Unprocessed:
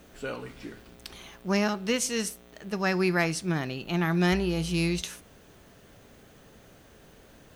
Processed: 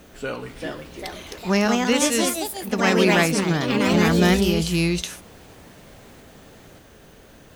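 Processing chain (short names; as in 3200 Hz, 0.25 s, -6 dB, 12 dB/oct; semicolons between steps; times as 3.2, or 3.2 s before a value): echoes that change speed 0.431 s, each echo +3 st, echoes 3; gain +5.5 dB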